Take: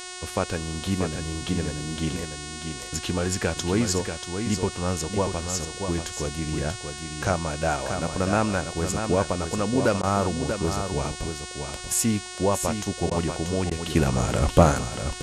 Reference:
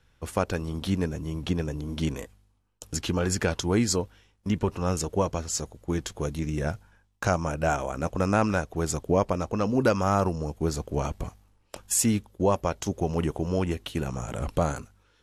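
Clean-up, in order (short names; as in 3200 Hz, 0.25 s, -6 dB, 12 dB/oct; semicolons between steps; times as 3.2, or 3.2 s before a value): de-hum 364.5 Hz, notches 26; interpolate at 10.02/13.1/13.7, 11 ms; inverse comb 0.636 s -7 dB; gain correction -8.5 dB, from 13.9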